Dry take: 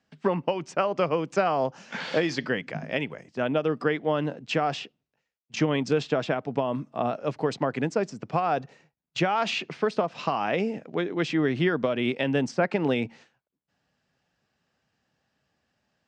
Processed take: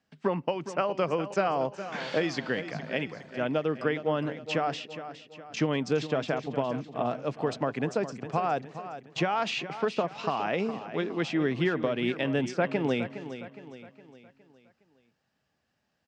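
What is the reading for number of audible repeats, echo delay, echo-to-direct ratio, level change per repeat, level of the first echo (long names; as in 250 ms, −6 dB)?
4, 413 ms, −11.0 dB, −7.0 dB, −12.0 dB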